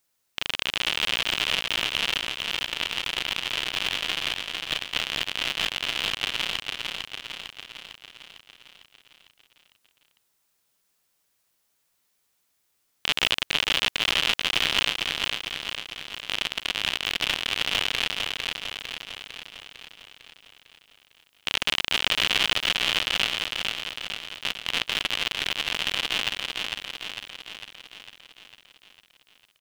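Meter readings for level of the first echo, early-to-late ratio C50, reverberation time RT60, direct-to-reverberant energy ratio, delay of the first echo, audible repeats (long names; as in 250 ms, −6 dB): −4.0 dB, no reverb audible, no reverb audible, no reverb audible, 452 ms, 7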